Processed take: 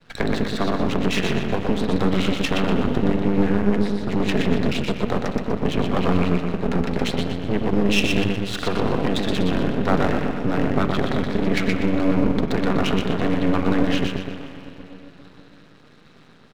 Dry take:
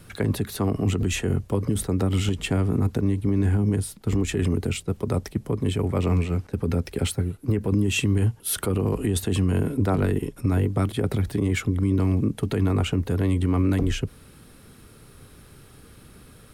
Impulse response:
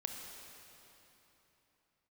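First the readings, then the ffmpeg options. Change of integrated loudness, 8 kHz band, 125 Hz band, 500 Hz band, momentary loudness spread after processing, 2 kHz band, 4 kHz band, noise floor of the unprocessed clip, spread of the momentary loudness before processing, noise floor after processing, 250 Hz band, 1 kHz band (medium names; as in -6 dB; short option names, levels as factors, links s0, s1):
+2.5 dB, -6.0 dB, -3.5 dB, +5.0 dB, 5 LU, +7.5 dB, +6.0 dB, -50 dBFS, 5 LU, -49 dBFS, +4.0 dB, +9.0 dB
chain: -filter_complex "[0:a]agate=range=0.0224:threshold=0.00794:ratio=3:detection=peak,highpass=f=150:w=0.5412,highpass=f=150:w=1.3066,equalizer=f=370:t=q:w=4:g=-7,equalizer=f=1800:t=q:w=4:g=4,equalizer=f=2700:t=q:w=4:g=4,equalizer=f=3900:t=q:w=4:g=9,lowpass=f=5300:w=0.5412,lowpass=f=5300:w=1.3066,aecho=1:1:122|244|366|488|610:0.631|0.259|0.106|0.0435|0.0178,asplit=2[s0][s1];[1:a]atrim=start_sample=2205,lowpass=2200[s2];[s1][s2]afir=irnorm=-1:irlink=0,volume=1.12[s3];[s0][s3]amix=inputs=2:normalize=0,aeval=exprs='max(val(0),0)':c=same,volume=1.5"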